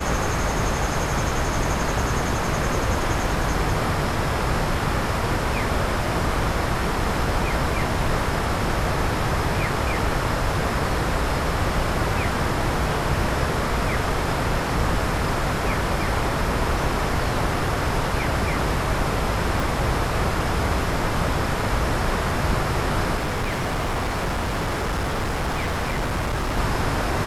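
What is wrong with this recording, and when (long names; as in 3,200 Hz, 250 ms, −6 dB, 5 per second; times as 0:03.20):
0:19.60: click
0:23.16–0:26.58: clipping −21 dBFS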